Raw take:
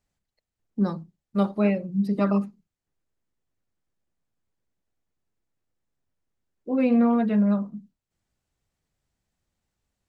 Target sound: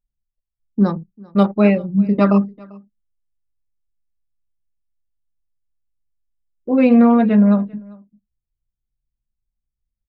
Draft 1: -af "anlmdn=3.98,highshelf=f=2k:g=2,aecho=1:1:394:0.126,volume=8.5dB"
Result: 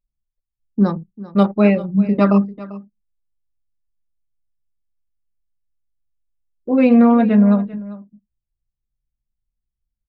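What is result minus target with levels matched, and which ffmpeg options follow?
echo-to-direct +7 dB
-af "anlmdn=3.98,highshelf=f=2k:g=2,aecho=1:1:394:0.0562,volume=8.5dB"

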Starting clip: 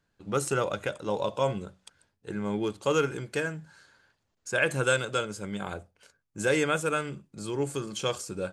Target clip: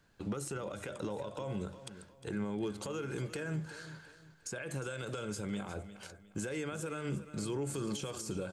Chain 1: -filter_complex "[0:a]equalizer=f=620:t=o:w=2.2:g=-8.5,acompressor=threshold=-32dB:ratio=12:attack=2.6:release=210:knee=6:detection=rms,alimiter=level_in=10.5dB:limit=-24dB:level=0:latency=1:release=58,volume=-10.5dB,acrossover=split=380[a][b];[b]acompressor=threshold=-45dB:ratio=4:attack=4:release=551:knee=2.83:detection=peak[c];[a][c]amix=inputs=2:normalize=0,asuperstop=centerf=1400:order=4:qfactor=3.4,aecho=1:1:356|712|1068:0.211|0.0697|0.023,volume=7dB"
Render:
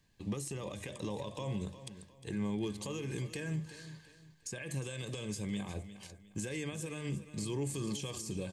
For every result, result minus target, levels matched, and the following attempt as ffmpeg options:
1000 Hz band -3.5 dB; 500 Hz band -2.5 dB
-filter_complex "[0:a]equalizer=f=620:t=o:w=2.2:g=-8.5,acompressor=threshold=-32dB:ratio=12:attack=2.6:release=210:knee=6:detection=rms,alimiter=level_in=10.5dB:limit=-24dB:level=0:latency=1:release=58,volume=-10.5dB,acrossover=split=380[a][b];[b]acompressor=threshold=-45dB:ratio=4:attack=4:release=551:knee=2.83:detection=peak[c];[a][c]amix=inputs=2:normalize=0,aecho=1:1:356|712|1068:0.211|0.0697|0.023,volume=7dB"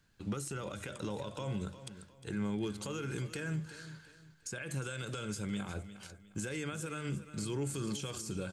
500 Hz band -3.0 dB
-filter_complex "[0:a]acompressor=threshold=-32dB:ratio=12:attack=2.6:release=210:knee=6:detection=rms,alimiter=level_in=10.5dB:limit=-24dB:level=0:latency=1:release=58,volume=-10.5dB,acrossover=split=380[a][b];[b]acompressor=threshold=-45dB:ratio=4:attack=4:release=551:knee=2.83:detection=peak[c];[a][c]amix=inputs=2:normalize=0,aecho=1:1:356|712|1068:0.211|0.0697|0.023,volume=7dB"

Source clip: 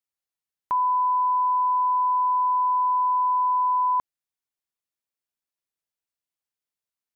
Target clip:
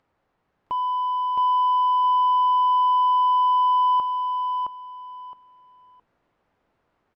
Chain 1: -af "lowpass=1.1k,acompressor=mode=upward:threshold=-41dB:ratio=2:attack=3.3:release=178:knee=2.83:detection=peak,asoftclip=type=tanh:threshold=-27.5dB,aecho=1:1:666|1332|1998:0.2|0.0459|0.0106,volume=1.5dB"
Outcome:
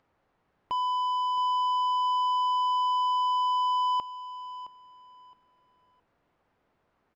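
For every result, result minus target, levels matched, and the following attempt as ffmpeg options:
echo-to-direct -11 dB; soft clip: distortion +9 dB
-af "lowpass=1.1k,acompressor=mode=upward:threshold=-41dB:ratio=2:attack=3.3:release=178:knee=2.83:detection=peak,asoftclip=type=tanh:threshold=-27.5dB,aecho=1:1:666|1332|1998:0.708|0.163|0.0375,volume=1.5dB"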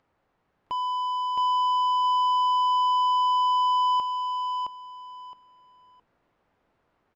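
soft clip: distortion +9 dB
-af "lowpass=1.1k,acompressor=mode=upward:threshold=-41dB:ratio=2:attack=3.3:release=178:knee=2.83:detection=peak,asoftclip=type=tanh:threshold=-21dB,aecho=1:1:666|1332|1998:0.708|0.163|0.0375,volume=1.5dB"

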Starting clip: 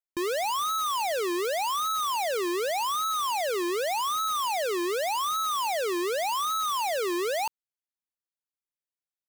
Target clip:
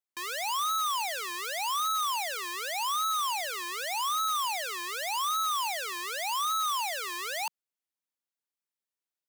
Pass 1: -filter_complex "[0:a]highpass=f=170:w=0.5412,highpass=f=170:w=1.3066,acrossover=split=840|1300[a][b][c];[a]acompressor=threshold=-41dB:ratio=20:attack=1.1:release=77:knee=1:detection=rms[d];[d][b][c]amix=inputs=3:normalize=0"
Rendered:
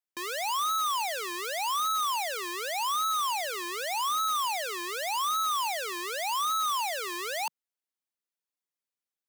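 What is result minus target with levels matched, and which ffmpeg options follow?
compressor: peak gain reduction -11 dB
-filter_complex "[0:a]highpass=f=170:w=0.5412,highpass=f=170:w=1.3066,acrossover=split=840|1300[a][b][c];[a]acompressor=threshold=-52.5dB:ratio=20:attack=1.1:release=77:knee=1:detection=rms[d];[d][b][c]amix=inputs=3:normalize=0"

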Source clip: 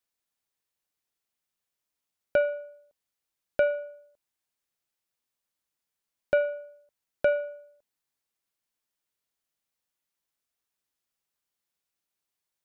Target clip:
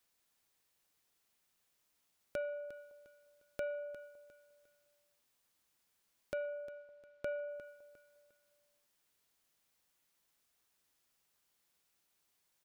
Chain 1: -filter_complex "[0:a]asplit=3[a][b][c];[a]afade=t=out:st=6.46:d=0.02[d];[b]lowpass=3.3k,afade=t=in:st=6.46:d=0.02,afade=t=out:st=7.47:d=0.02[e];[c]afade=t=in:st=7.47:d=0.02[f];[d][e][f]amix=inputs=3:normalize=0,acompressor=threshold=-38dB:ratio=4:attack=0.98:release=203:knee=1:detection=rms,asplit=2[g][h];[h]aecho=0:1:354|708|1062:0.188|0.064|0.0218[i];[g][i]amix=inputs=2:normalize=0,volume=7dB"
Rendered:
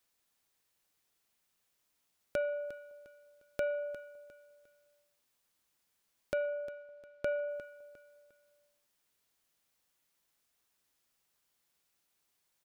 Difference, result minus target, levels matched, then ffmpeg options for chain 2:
compressor: peak gain reduction -5.5 dB
-filter_complex "[0:a]asplit=3[a][b][c];[a]afade=t=out:st=6.46:d=0.02[d];[b]lowpass=3.3k,afade=t=in:st=6.46:d=0.02,afade=t=out:st=7.47:d=0.02[e];[c]afade=t=in:st=7.47:d=0.02[f];[d][e][f]amix=inputs=3:normalize=0,acompressor=threshold=-45.5dB:ratio=4:attack=0.98:release=203:knee=1:detection=rms,asplit=2[g][h];[h]aecho=0:1:354|708|1062:0.188|0.064|0.0218[i];[g][i]amix=inputs=2:normalize=0,volume=7dB"

